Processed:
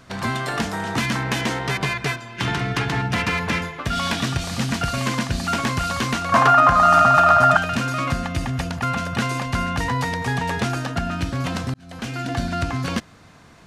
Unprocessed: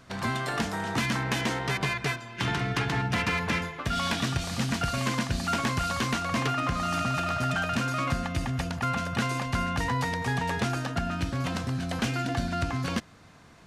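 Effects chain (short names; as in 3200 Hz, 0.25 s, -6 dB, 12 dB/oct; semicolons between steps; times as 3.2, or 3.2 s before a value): 6.32–7.57 band shelf 980 Hz +12.5 dB; 11.74–12.41 fade in; gain +5 dB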